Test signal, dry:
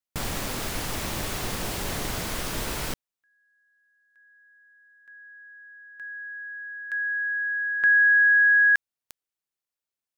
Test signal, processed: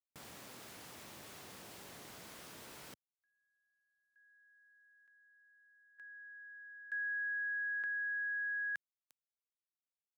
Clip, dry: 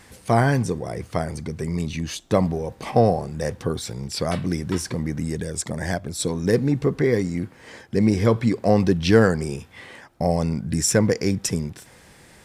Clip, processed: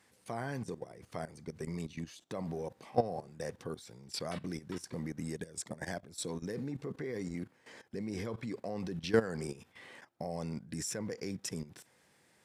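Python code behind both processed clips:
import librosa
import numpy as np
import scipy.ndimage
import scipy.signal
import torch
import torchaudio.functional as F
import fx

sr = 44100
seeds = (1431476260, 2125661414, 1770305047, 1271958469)

y = scipy.signal.sosfilt(scipy.signal.butter(2, 100.0, 'highpass', fs=sr, output='sos'), x)
y = fx.low_shelf(y, sr, hz=150.0, db=-6.0)
y = fx.level_steps(y, sr, step_db=15)
y = y * 10.0 ** (-8.0 / 20.0)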